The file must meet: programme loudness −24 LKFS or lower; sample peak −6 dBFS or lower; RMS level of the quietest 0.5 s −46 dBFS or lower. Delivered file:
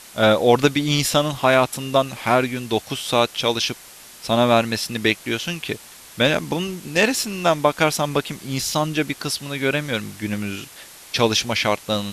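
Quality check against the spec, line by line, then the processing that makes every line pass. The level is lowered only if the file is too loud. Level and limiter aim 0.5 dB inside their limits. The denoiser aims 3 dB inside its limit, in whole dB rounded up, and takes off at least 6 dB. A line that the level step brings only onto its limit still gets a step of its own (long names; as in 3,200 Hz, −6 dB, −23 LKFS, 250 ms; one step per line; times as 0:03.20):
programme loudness −20.5 LKFS: out of spec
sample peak −2.0 dBFS: out of spec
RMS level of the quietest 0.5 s −43 dBFS: out of spec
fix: level −4 dB
brickwall limiter −6.5 dBFS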